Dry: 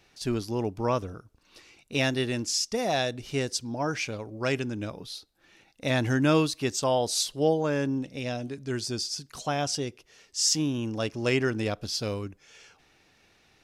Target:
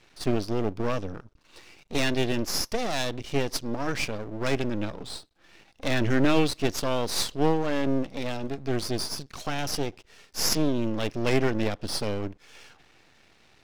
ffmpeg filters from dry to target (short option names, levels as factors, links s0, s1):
-filter_complex "[0:a]lowpass=4900,acrossover=split=490|1400[s0][s1][s2];[s1]acompressor=threshold=0.00562:ratio=6[s3];[s0][s3][s2]amix=inputs=3:normalize=0,aeval=exprs='max(val(0),0)':c=same,volume=2.51"